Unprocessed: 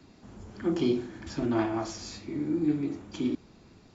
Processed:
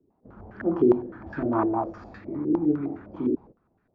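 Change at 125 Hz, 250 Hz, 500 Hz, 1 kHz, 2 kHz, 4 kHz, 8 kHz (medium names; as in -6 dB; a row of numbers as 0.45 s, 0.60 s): +0.5 dB, +3.5 dB, +6.5 dB, +7.5 dB, +0.5 dB, under -20 dB, no reading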